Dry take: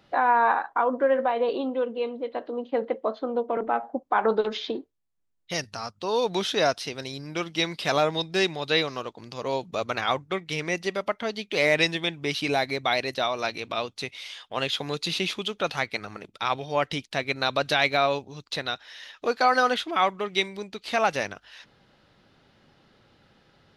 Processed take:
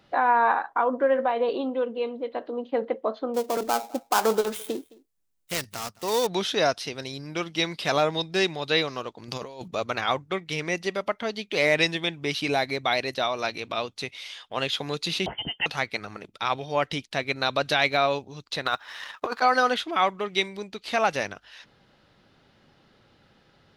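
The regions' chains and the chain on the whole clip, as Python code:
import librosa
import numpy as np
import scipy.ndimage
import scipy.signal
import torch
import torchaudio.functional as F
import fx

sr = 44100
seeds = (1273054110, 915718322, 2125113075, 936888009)

y = fx.chain(x, sr, fx.dead_time(dead_ms=0.12),
    fx.high_shelf(hz=5100.0, db=9.5),
    fx.echo_single(ms=215, db=-23.0), at=(3.34, 6.27))
y = fx.chain(y, sr, fx.high_shelf(hz=9700.0, db=10.0),
    fx.over_compress(threshold_db=-37.0, ratio=-1.0), at=(9.28, 9.68))
y = fx.chain(y, sr, fx.freq_invert(carrier_hz=3300),
    fx.notch_comb(f0_hz=1200.0), at=(15.26, 15.66))
y = fx.chain(y, sr, fx.law_mismatch(coded='A'),
    fx.peak_eq(hz=1100.0, db=13.0, octaves=1.2),
    fx.over_compress(threshold_db=-27.0, ratio=-1.0), at=(18.65, 19.42))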